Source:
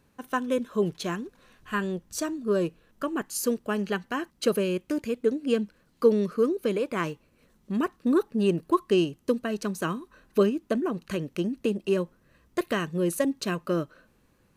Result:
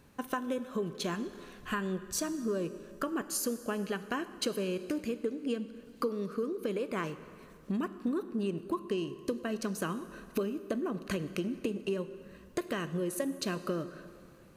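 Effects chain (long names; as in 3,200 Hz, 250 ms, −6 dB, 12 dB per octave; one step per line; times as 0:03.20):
downward compressor 6 to 1, threshold −36 dBFS, peak gain reduction 20 dB
dense smooth reverb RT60 2.5 s, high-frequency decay 0.75×, DRR 12 dB
level +4.5 dB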